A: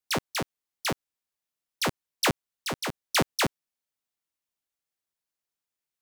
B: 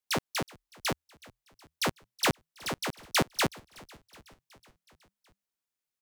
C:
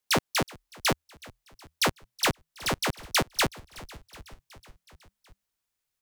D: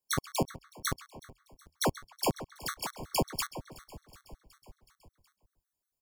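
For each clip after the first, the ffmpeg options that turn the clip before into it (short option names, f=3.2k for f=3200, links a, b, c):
-filter_complex "[0:a]asplit=6[a][b][c][d][e][f];[b]adelay=371,afreqshift=-41,volume=-23dB[g];[c]adelay=742,afreqshift=-82,volume=-27dB[h];[d]adelay=1113,afreqshift=-123,volume=-31dB[i];[e]adelay=1484,afreqshift=-164,volume=-35dB[j];[f]adelay=1855,afreqshift=-205,volume=-39.1dB[k];[a][g][h][i][j][k]amix=inputs=6:normalize=0,volume=-2dB"
-af "asubboost=boost=3:cutoff=110,alimiter=limit=-23dB:level=0:latency=1:release=241,volume=6dB"
-filter_complex "[0:a]equalizer=f=2.6k:t=o:w=1.3:g=-11.5,asplit=2[a][b];[b]adelay=133,lowpass=f=3.9k:p=1,volume=-13.5dB,asplit=2[c][d];[d]adelay=133,lowpass=f=3.9k:p=1,volume=0.41,asplit=2[e][f];[f]adelay=133,lowpass=f=3.9k:p=1,volume=0.41,asplit=2[g][h];[h]adelay=133,lowpass=f=3.9k:p=1,volume=0.41[i];[a][c][e][g][i]amix=inputs=5:normalize=0,afftfilt=real='re*gt(sin(2*PI*5.4*pts/sr)*(1-2*mod(floor(b*sr/1024/1100),2)),0)':imag='im*gt(sin(2*PI*5.4*pts/sr)*(1-2*mod(floor(b*sr/1024/1100),2)),0)':win_size=1024:overlap=0.75"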